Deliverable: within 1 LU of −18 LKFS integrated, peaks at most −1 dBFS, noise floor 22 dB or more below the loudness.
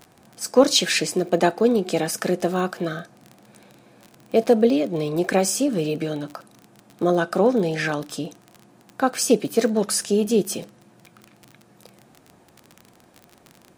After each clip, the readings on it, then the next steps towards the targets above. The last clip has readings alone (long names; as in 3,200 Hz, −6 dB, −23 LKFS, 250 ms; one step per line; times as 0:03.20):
crackle rate 26 per second; integrated loudness −21.5 LKFS; sample peak −2.5 dBFS; target loudness −18.0 LKFS
→ click removal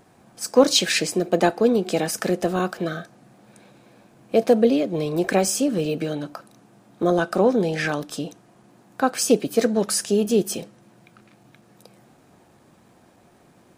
crackle rate 0 per second; integrated loudness −21.5 LKFS; sample peak −2.5 dBFS; target loudness −18.0 LKFS
→ level +3.5 dB
brickwall limiter −1 dBFS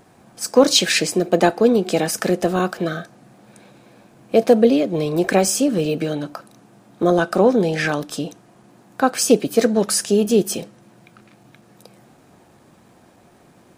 integrated loudness −18.5 LKFS; sample peak −1.0 dBFS; background noise floor −52 dBFS